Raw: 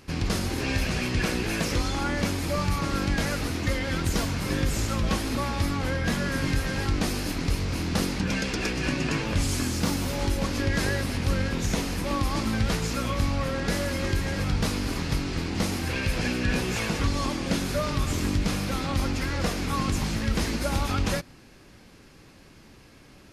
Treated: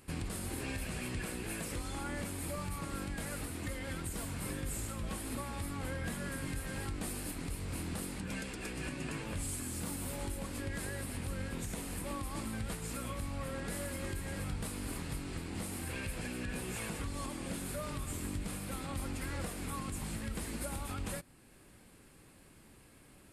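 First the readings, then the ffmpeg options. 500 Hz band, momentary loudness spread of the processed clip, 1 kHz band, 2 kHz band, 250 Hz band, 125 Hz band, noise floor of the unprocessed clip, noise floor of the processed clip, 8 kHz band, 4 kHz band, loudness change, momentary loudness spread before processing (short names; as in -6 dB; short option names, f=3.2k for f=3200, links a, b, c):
-12.5 dB, 2 LU, -13.0 dB, -13.0 dB, -13.0 dB, -13.0 dB, -51 dBFS, -59 dBFS, -7.0 dB, -15.0 dB, -12.5 dB, 2 LU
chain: -af "highshelf=f=7.1k:t=q:w=3:g=6.5,alimiter=limit=-21dB:level=0:latency=1:release=388,volume=-8dB"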